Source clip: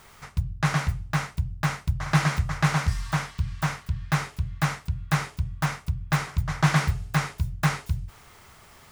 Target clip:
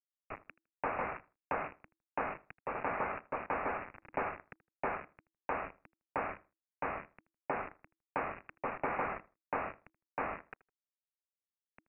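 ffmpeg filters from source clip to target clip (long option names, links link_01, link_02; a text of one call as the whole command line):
ffmpeg -i in.wav -filter_complex "[0:a]afftdn=noise_reduction=17:noise_floor=-47,highpass=1200,areverse,acompressor=mode=upward:threshold=-42dB:ratio=2.5,areverse,alimiter=limit=-23dB:level=0:latency=1:release=259,acompressor=threshold=-47dB:ratio=1.5,aresample=8000,aeval=exprs='val(0)*gte(abs(val(0)),0.00708)':channel_layout=same,aresample=44100,asetrate=33075,aresample=44100,afreqshift=-330,asplit=2[link_01][link_02];[link_02]adelay=79,lowpass=frequency=1700:poles=1,volume=-19dB,asplit=2[link_03][link_04];[link_04]adelay=79,lowpass=frequency=1700:poles=1,volume=0.24[link_05];[link_01][link_03][link_05]amix=inputs=3:normalize=0,volume=5.5dB" out.wav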